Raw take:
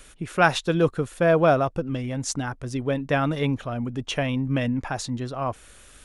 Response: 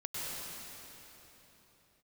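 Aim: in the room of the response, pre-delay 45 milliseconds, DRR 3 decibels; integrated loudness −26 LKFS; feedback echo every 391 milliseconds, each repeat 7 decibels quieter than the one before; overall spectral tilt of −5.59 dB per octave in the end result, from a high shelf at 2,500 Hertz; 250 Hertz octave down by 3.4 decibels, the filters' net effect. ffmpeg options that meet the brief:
-filter_complex "[0:a]equalizer=frequency=250:width_type=o:gain=-4.5,highshelf=frequency=2500:gain=-6,aecho=1:1:391|782|1173|1564|1955:0.447|0.201|0.0905|0.0407|0.0183,asplit=2[link_01][link_02];[1:a]atrim=start_sample=2205,adelay=45[link_03];[link_02][link_03]afir=irnorm=-1:irlink=0,volume=-6.5dB[link_04];[link_01][link_04]amix=inputs=2:normalize=0,volume=-2.5dB"

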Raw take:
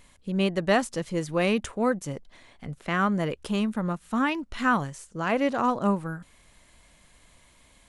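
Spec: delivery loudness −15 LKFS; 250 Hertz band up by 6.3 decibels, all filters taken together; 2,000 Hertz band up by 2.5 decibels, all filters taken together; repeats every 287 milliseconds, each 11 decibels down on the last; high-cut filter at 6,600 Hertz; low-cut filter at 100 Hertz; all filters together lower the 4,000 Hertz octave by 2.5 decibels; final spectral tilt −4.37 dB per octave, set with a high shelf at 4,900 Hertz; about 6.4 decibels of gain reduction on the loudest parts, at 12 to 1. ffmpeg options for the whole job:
ffmpeg -i in.wav -af "highpass=100,lowpass=6600,equalizer=frequency=250:width_type=o:gain=8,equalizer=frequency=2000:width_type=o:gain=5,equalizer=frequency=4000:width_type=o:gain=-4,highshelf=frequency=4900:gain=-6,acompressor=threshold=-21dB:ratio=12,aecho=1:1:287|574|861:0.282|0.0789|0.0221,volume=12.5dB" out.wav

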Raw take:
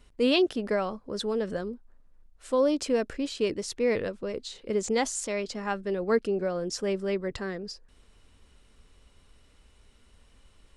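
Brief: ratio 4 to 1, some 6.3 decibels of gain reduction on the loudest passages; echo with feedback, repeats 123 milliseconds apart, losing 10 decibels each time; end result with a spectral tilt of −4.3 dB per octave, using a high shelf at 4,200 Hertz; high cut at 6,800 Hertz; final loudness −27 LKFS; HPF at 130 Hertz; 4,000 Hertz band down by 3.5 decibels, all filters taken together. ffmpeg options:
ffmpeg -i in.wav -af "highpass=130,lowpass=6800,equalizer=frequency=4000:width_type=o:gain=-6.5,highshelf=frequency=4200:gain=4,acompressor=threshold=-27dB:ratio=4,aecho=1:1:123|246|369|492:0.316|0.101|0.0324|0.0104,volume=5.5dB" out.wav

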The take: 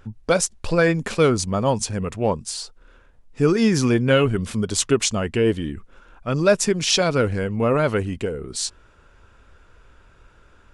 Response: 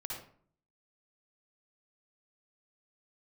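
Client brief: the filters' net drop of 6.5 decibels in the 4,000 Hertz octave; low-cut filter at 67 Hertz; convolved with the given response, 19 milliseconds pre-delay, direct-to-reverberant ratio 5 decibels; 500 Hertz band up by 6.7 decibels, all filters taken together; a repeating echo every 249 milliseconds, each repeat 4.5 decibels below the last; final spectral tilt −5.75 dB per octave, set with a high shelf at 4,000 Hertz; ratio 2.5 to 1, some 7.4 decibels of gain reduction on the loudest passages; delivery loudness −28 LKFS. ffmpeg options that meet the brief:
-filter_complex "[0:a]highpass=67,equalizer=frequency=500:width_type=o:gain=8,highshelf=frequency=4000:gain=-6,equalizer=frequency=4000:width_type=o:gain=-5,acompressor=threshold=-18dB:ratio=2.5,aecho=1:1:249|498|747|996|1245|1494|1743|1992|2241:0.596|0.357|0.214|0.129|0.0772|0.0463|0.0278|0.0167|0.01,asplit=2[link_01][link_02];[1:a]atrim=start_sample=2205,adelay=19[link_03];[link_02][link_03]afir=irnorm=-1:irlink=0,volume=-5dB[link_04];[link_01][link_04]amix=inputs=2:normalize=0,volume=-8.5dB"

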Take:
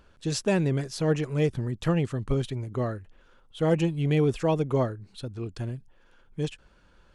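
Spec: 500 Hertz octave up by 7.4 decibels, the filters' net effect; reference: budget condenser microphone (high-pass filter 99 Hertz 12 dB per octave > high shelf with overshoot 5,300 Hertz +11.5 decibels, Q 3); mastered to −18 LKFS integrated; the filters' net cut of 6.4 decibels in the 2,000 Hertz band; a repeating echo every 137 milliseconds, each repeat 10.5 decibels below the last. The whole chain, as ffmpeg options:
ffmpeg -i in.wav -af "highpass=99,equalizer=frequency=500:width_type=o:gain=9,equalizer=frequency=2000:width_type=o:gain=-6.5,highshelf=frequency=5300:width_type=q:width=3:gain=11.5,aecho=1:1:137|274|411:0.299|0.0896|0.0269,volume=4.5dB" out.wav

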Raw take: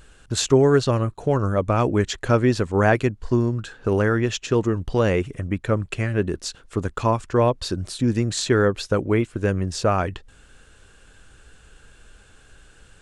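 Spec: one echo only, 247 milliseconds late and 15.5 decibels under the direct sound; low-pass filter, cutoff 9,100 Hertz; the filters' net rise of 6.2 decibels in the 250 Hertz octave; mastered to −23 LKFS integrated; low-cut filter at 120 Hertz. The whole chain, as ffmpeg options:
ffmpeg -i in.wav -af "highpass=120,lowpass=9100,equalizer=frequency=250:width_type=o:gain=8,aecho=1:1:247:0.168,volume=-4dB" out.wav

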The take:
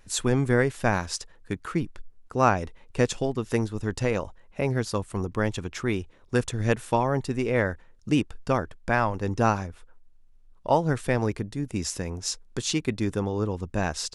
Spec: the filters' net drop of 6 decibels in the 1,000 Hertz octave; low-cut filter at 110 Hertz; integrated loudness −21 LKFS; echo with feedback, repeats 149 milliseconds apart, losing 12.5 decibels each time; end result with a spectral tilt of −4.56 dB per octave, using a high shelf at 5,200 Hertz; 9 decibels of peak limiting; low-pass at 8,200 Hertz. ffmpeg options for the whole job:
ffmpeg -i in.wav -af "highpass=110,lowpass=8200,equalizer=frequency=1000:width_type=o:gain=-8.5,highshelf=frequency=5200:gain=8.5,alimiter=limit=-16.5dB:level=0:latency=1,aecho=1:1:149|298|447:0.237|0.0569|0.0137,volume=9dB" out.wav

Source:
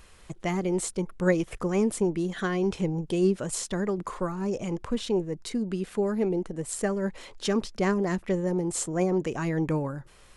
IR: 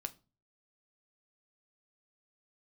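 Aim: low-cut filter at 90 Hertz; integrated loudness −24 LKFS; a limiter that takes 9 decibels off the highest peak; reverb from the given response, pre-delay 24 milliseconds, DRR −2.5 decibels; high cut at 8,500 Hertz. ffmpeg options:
-filter_complex "[0:a]highpass=90,lowpass=8500,alimiter=limit=-20.5dB:level=0:latency=1,asplit=2[link_01][link_02];[1:a]atrim=start_sample=2205,adelay=24[link_03];[link_02][link_03]afir=irnorm=-1:irlink=0,volume=4.5dB[link_04];[link_01][link_04]amix=inputs=2:normalize=0,volume=2dB"

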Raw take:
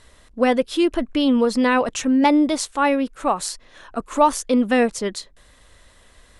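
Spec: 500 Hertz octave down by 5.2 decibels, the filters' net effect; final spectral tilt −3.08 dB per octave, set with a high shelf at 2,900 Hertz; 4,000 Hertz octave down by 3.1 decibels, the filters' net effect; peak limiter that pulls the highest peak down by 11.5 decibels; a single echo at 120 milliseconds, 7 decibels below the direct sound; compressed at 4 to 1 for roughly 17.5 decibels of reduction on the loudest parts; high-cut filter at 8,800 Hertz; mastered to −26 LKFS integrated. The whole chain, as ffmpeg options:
ffmpeg -i in.wav -af "lowpass=8800,equalizer=frequency=500:width_type=o:gain=-6,highshelf=frequency=2900:gain=3,equalizer=frequency=4000:width_type=o:gain=-6.5,acompressor=threshold=-35dB:ratio=4,alimiter=level_in=7dB:limit=-24dB:level=0:latency=1,volume=-7dB,aecho=1:1:120:0.447,volume=13dB" out.wav

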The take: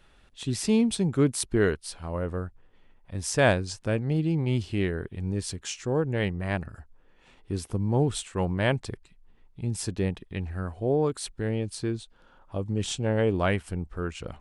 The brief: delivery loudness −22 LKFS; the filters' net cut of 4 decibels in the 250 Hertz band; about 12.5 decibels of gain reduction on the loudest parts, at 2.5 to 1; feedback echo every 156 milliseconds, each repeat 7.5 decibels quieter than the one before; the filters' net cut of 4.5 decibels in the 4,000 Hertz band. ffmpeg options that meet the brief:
ffmpeg -i in.wav -af "equalizer=frequency=250:width_type=o:gain=-5.5,equalizer=frequency=4000:width_type=o:gain=-6,acompressor=threshold=-37dB:ratio=2.5,aecho=1:1:156|312|468|624|780:0.422|0.177|0.0744|0.0312|0.0131,volume=16dB" out.wav

